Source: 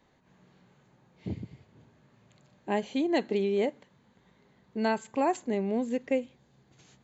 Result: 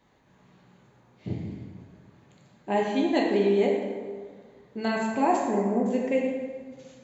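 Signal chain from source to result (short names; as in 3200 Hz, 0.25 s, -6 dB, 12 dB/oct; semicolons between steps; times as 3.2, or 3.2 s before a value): 5.44–5.86 LPF 1700 Hz 24 dB/oct; plate-style reverb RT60 1.7 s, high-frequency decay 0.6×, DRR -2.5 dB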